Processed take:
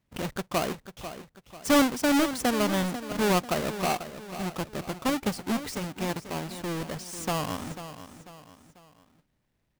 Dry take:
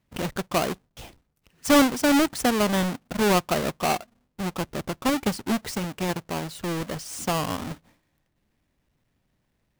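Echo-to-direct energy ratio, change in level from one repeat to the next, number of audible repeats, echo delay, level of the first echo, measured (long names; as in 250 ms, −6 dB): −11.0 dB, −7.5 dB, 3, 493 ms, −12.0 dB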